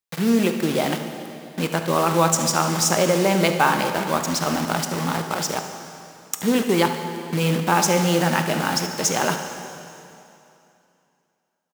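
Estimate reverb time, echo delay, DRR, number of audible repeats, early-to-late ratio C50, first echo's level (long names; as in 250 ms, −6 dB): 2.7 s, 73 ms, 5.0 dB, 1, 6.0 dB, −14.0 dB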